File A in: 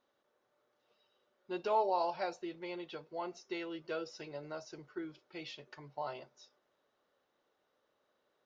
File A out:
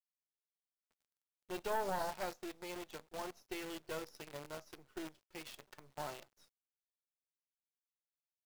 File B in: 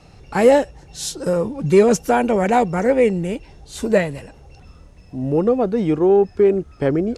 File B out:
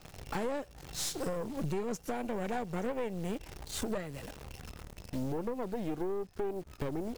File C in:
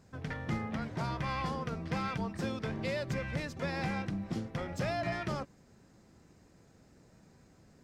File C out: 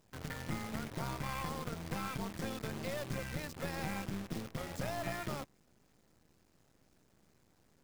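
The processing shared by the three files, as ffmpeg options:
-af "acrusher=bits=8:dc=4:mix=0:aa=0.000001,acompressor=threshold=-27dB:ratio=16,aeval=exprs='(tanh(28.2*val(0)+0.8)-tanh(0.8))/28.2':c=same"

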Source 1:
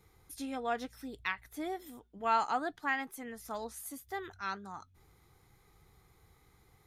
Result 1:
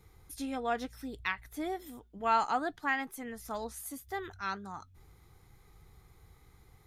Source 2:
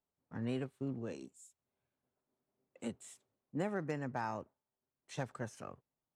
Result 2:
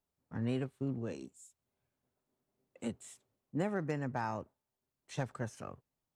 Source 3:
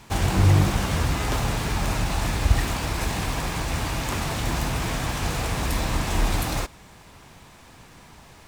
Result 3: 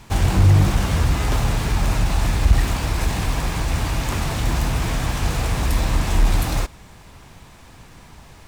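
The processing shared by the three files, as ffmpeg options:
-af "lowshelf=f=100:g=8,acontrast=38,volume=-4dB"

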